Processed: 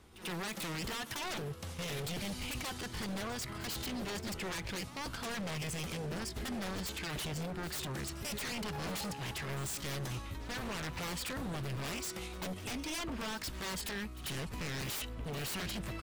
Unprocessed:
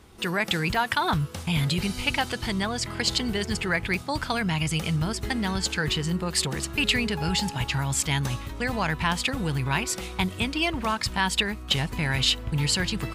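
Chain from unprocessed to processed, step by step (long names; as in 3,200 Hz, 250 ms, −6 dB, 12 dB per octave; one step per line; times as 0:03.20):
tempo change 0.82×
wave folding −26.5 dBFS
echo ahead of the sound 92 ms −15 dB
level −7.5 dB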